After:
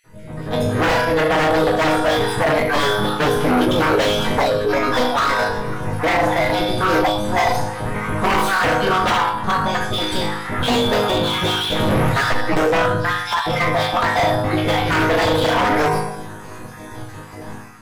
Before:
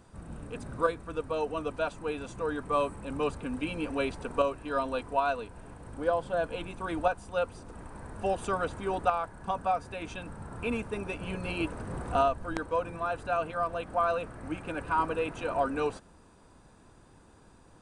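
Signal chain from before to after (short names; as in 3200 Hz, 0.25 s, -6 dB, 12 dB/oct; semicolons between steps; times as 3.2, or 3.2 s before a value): random spectral dropouts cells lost 41%; dynamic EQ 1500 Hz, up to -6 dB, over -44 dBFS, Q 0.92; AGC gain up to 15.5 dB; resonator bank G#2 minor, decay 0.81 s; sine folder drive 16 dB, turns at -20 dBFS; formant shift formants +5 st; slew limiter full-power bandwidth 130 Hz; gain +7.5 dB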